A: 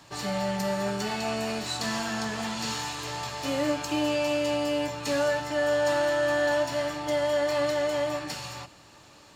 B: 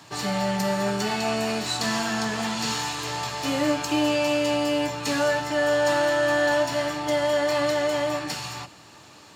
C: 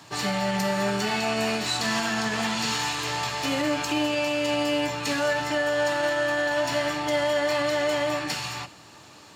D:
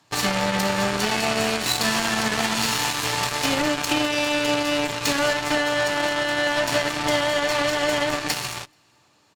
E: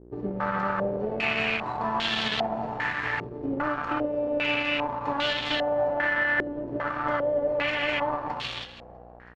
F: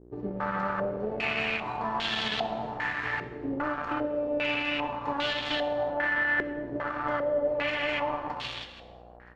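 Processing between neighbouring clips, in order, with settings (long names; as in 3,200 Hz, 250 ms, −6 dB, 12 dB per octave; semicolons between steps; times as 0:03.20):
high-pass filter 85 Hz; notch filter 560 Hz, Q 14; level +4.5 dB
dynamic equaliser 2,300 Hz, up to +4 dB, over −43 dBFS, Q 0.94; brickwall limiter −16.5 dBFS, peak gain reduction 6.5 dB
downward compressor, threshold −26 dBFS, peak gain reduction 5.5 dB; single-tap delay 431 ms −18.5 dB; harmonic generator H 7 −16 dB, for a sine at −17 dBFS; level +8.5 dB
hum with harmonics 60 Hz, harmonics 31, −44 dBFS −4 dB per octave; echo with shifted repeats 324 ms, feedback 50%, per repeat −31 Hz, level −16.5 dB; low-pass on a step sequencer 2.5 Hz 380–3,400 Hz; level −8 dB
reverb whose tail is shaped and stops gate 400 ms falling, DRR 12 dB; level −3 dB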